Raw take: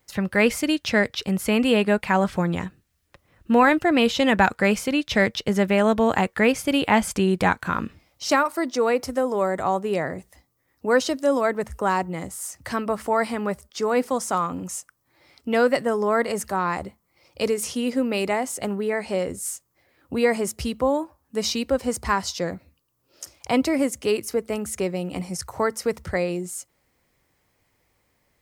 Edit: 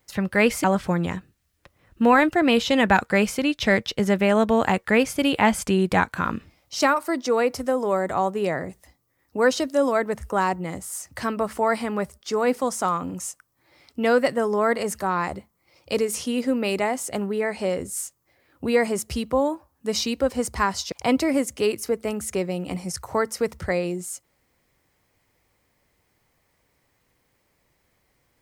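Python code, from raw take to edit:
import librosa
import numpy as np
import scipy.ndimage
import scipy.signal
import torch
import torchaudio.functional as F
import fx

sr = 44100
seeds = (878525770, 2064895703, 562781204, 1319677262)

y = fx.edit(x, sr, fx.cut(start_s=0.64, length_s=1.49),
    fx.cut(start_s=22.41, length_s=0.96), tone=tone)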